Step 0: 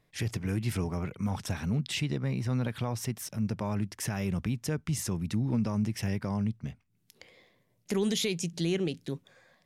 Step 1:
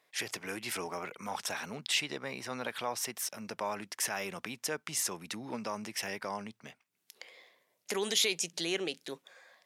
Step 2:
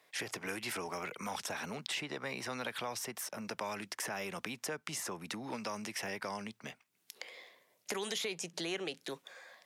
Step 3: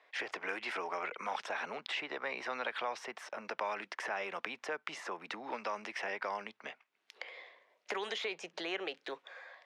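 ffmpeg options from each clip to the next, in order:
-af "highpass=590,volume=4dB"
-filter_complex "[0:a]acrossover=split=160|580|1700[a][b][c][d];[a]acompressor=threshold=-58dB:ratio=4[e];[b]acompressor=threshold=-48dB:ratio=4[f];[c]acompressor=threshold=-47dB:ratio=4[g];[d]acompressor=threshold=-45dB:ratio=4[h];[e][f][g][h]amix=inputs=4:normalize=0,volume=4dB"
-af "highpass=480,lowpass=2.7k,volume=4dB"

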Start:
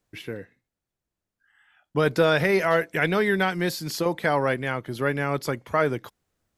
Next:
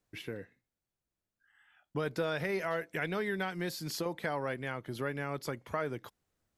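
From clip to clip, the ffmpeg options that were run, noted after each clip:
-af "acompressor=threshold=-31dB:ratio=2,volume=-5dB"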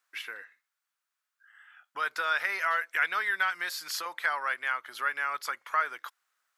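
-af "highpass=f=1.3k:t=q:w=2.4,volume=5dB"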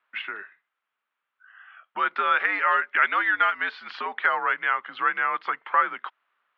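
-af "highpass=f=250:t=q:w=0.5412,highpass=f=250:t=q:w=1.307,lowpass=f=3.3k:t=q:w=0.5176,lowpass=f=3.3k:t=q:w=0.7071,lowpass=f=3.3k:t=q:w=1.932,afreqshift=-90,volume=6.5dB"

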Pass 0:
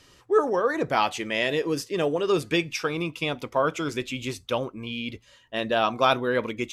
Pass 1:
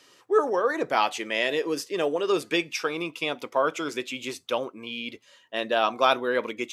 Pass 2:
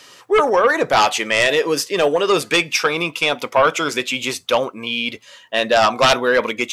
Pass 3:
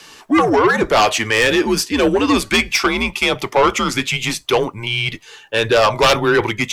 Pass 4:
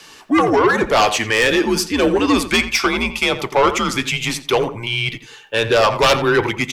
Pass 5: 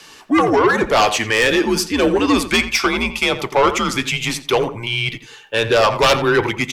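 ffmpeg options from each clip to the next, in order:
-af "highpass=290"
-af "equalizer=f=330:t=o:w=0.84:g=-7,aeval=exprs='0.422*sin(PI/2*2.82*val(0)/0.422)':c=same"
-af "acontrast=81,afreqshift=-110,volume=-4dB"
-filter_complex "[0:a]asplit=2[a][b];[b]adelay=86,lowpass=f=2.4k:p=1,volume=-11dB,asplit=2[c][d];[d]adelay=86,lowpass=f=2.4k:p=1,volume=0.23,asplit=2[e][f];[f]adelay=86,lowpass=f=2.4k:p=1,volume=0.23[g];[a][c][e][g]amix=inputs=4:normalize=0,volume=-1dB"
-ar 44100 -c:a libvorbis -b:a 192k

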